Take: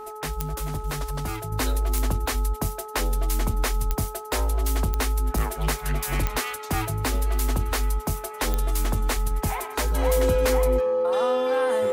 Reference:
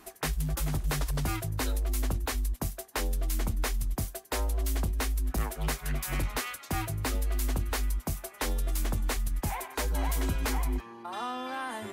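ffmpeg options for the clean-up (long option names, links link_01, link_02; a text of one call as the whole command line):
ffmpeg -i in.wav -af "adeclick=threshold=4,bandreject=frequency=428.4:width_type=h:width=4,bandreject=frequency=856.8:width_type=h:width=4,bandreject=frequency=1285.2:width_type=h:width=4,bandreject=frequency=510:width=30,asetnsamples=nb_out_samples=441:pad=0,asendcmd='1.52 volume volume -5.5dB',volume=0dB" out.wav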